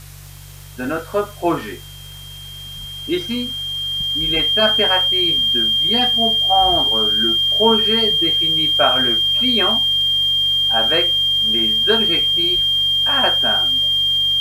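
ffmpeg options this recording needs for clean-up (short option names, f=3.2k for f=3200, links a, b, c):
-af "adeclick=t=4,bandreject=f=47.9:t=h:w=4,bandreject=f=95.8:t=h:w=4,bandreject=f=143.7:t=h:w=4,bandreject=f=3.2k:w=30,afftdn=nr=29:nf=-35"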